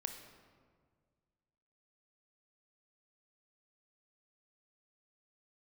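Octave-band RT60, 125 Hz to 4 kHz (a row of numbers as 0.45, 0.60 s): 2.3, 2.1, 1.9, 1.7, 1.3, 1.0 s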